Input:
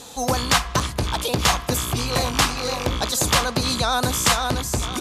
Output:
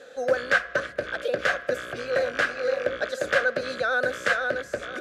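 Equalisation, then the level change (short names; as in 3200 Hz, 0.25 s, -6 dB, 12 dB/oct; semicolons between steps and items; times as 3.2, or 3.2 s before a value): double band-pass 930 Hz, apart 1.5 oct; +7.5 dB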